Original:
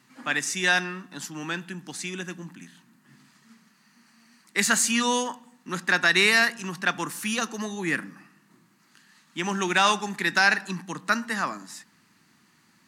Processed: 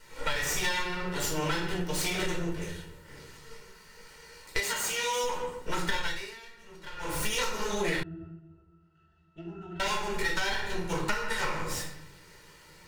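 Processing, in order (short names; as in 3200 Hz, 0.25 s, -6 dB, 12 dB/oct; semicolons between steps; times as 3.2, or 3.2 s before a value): minimum comb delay 2.1 ms; reverb RT60 0.70 s, pre-delay 4 ms, DRR -5 dB; compressor 16:1, threshold -29 dBFS, peak gain reduction 19.5 dB; 4.59–5.24 HPF 230 Hz 6 dB/oct; 6.05–7.13 dip -18.5 dB, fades 0.36 s quadratic; 8.03–9.8 octave resonator E, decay 0.17 s; gain +3.5 dB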